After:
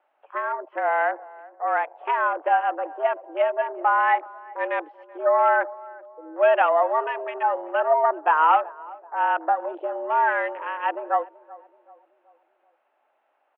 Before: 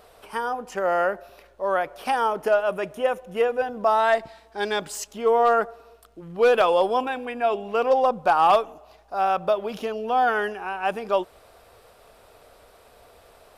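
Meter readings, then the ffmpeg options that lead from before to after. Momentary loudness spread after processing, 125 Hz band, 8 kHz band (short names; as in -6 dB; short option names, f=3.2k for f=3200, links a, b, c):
13 LU, under -40 dB, under -35 dB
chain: -filter_complex "[0:a]afwtdn=0.0224,asplit=2[a][b];[b]adelay=381,lowpass=f=840:p=1,volume=-19dB,asplit=2[c][d];[d]adelay=381,lowpass=f=840:p=1,volume=0.51,asplit=2[e][f];[f]adelay=381,lowpass=f=840:p=1,volume=0.51,asplit=2[g][h];[h]adelay=381,lowpass=f=840:p=1,volume=0.51[i];[a][c][e][g][i]amix=inputs=5:normalize=0,highpass=f=150:t=q:w=0.5412,highpass=f=150:t=q:w=1.307,lowpass=f=2.7k:t=q:w=0.5176,lowpass=f=2.7k:t=q:w=0.7071,lowpass=f=2.7k:t=q:w=1.932,afreqshift=150"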